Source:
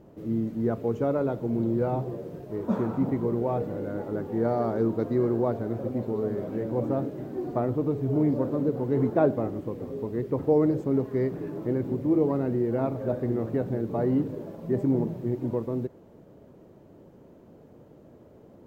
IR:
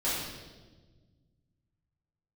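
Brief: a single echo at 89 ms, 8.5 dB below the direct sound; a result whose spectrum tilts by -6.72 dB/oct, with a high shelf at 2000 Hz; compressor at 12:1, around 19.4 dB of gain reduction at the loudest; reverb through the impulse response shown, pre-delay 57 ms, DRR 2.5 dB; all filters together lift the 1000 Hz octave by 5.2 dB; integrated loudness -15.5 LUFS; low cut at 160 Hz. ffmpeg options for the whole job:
-filter_complex "[0:a]highpass=160,equalizer=f=1k:t=o:g=6.5,highshelf=f=2k:g=4,acompressor=threshold=-35dB:ratio=12,aecho=1:1:89:0.376,asplit=2[a][b];[1:a]atrim=start_sample=2205,adelay=57[c];[b][c]afir=irnorm=-1:irlink=0,volume=-11.5dB[d];[a][d]amix=inputs=2:normalize=0,volume=21dB"

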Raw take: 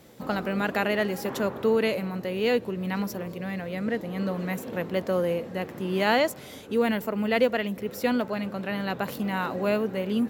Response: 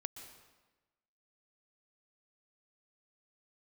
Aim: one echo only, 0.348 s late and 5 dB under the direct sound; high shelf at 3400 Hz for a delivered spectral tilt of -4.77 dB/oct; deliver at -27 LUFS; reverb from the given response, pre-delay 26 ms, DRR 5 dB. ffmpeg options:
-filter_complex "[0:a]highshelf=f=3.4k:g=-4,aecho=1:1:348:0.562,asplit=2[a][b];[1:a]atrim=start_sample=2205,adelay=26[c];[b][c]afir=irnorm=-1:irlink=0,volume=-2.5dB[d];[a][d]amix=inputs=2:normalize=0,volume=-1.5dB"

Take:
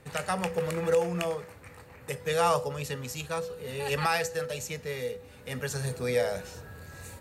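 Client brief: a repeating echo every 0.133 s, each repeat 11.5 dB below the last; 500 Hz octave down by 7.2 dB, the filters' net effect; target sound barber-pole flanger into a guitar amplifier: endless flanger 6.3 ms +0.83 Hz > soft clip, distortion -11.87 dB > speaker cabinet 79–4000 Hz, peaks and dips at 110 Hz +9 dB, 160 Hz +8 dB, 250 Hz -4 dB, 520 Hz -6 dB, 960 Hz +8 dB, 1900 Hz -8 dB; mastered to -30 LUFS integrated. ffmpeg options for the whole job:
-filter_complex "[0:a]equalizer=f=500:t=o:g=-4,aecho=1:1:133|266|399:0.266|0.0718|0.0194,asplit=2[a][b];[b]adelay=6.3,afreqshift=0.83[c];[a][c]amix=inputs=2:normalize=1,asoftclip=threshold=-29.5dB,highpass=79,equalizer=f=110:t=q:w=4:g=9,equalizer=f=160:t=q:w=4:g=8,equalizer=f=250:t=q:w=4:g=-4,equalizer=f=520:t=q:w=4:g=-6,equalizer=f=960:t=q:w=4:g=8,equalizer=f=1.9k:t=q:w=4:g=-8,lowpass=f=4k:w=0.5412,lowpass=f=4k:w=1.3066,volume=7dB"

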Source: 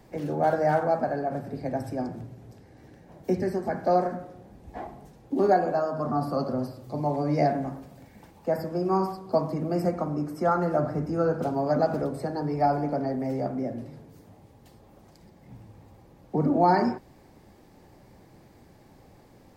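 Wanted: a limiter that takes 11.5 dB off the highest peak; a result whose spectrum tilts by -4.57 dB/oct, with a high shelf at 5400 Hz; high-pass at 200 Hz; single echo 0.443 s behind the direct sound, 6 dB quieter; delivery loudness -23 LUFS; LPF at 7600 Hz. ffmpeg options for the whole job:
-af "highpass=200,lowpass=7.6k,highshelf=f=5.4k:g=-4.5,alimiter=limit=-21.5dB:level=0:latency=1,aecho=1:1:443:0.501,volume=8.5dB"

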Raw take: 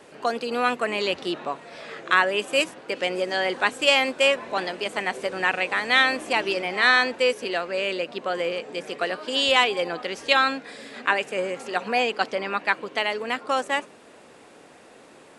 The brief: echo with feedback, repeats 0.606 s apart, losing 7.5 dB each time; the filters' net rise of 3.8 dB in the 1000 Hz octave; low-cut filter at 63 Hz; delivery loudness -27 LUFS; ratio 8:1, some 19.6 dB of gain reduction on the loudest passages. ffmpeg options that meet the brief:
-af "highpass=63,equalizer=f=1k:t=o:g=5,acompressor=threshold=-32dB:ratio=8,aecho=1:1:606|1212|1818|2424|3030:0.422|0.177|0.0744|0.0312|0.0131,volume=8.5dB"

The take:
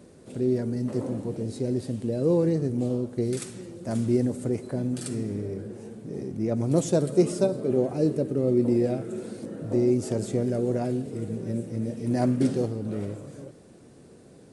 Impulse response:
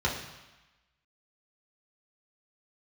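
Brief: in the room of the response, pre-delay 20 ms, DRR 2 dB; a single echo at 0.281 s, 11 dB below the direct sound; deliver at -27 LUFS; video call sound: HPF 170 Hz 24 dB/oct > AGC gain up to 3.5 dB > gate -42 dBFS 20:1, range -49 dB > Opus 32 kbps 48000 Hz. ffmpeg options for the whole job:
-filter_complex "[0:a]aecho=1:1:281:0.282,asplit=2[a][b];[1:a]atrim=start_sample=2205,adelay=20[c];[b][c]afir=irnorm=-1:irlink=0,volume=-12.5dB[d];[a][d]amix=inputs=2:normalize=0,highpass=f=170:w=0.5412,highpass=f=170:w=1.3066,dynaudnorm=m=3.5dB,agate=range=-49dB:threshold=-42dB:ratio=20,volume=-2.5dB" -ar 48000 -c:a libopus -b:a 32k

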